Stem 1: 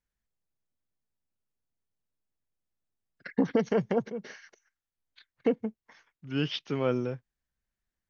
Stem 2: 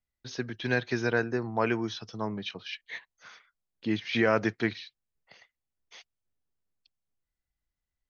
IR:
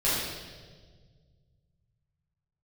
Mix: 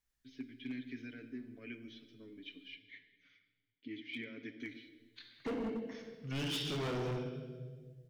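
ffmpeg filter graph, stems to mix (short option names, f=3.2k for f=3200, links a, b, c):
-filter_complex "[0:a]highshelf=f=2.3k:g=7,bandreject=f=530:w=12,acompressor=threshold=-29dB:ratio=2,volume=-4.5dB,asplit=3[a][b][c];[a]atrim=end=2.76,asetpts=PTS-STARTPTS,afade=t=out:st=2.756:d=0.004:c=hsin[d];[b]atrim=start=2.76:end=4.6,asetpts=PTS-STARTPTS,volume=0[e];[c]atrim=start=4.6,asetpts=PTS-STARTPTS,afade=t=in:d=0.004:c=hsin[f];[d][e][f]concat=n=3:v=0:a=1,asplit=2[g][h];[h]volume=-12dB[i];[1:a]aecho=1:1:7.1:0.71,alimiter=limit=-17.5dB:level=0:latency=1:release=68,asplit=3[j][k][l];[j]bandpass=f=270:t=q:w=8,volume=0dB[m];[k]bandpass=f=2.29k:t=q:w=8,volume=-6dB[n];[l]bandpass=f=3.01k:t=q:w=8,volume=-9dB[o];[m][n][o]amix=inputs=3:normalize=0,volume=-5.5dB,asplit=2[p][q];[q]volume=-20.5dB[r];[2:a]atrim=start_sample=2205[s];[i][r]amix=inputs=2:normalize=0[t];[t][s]afir=irnorm=-1:irlink=0[u];[g][p][u]amix=inputs=3:normalize=0,volume=34.5dB,asoftclip=hard,volume=-34.5dB"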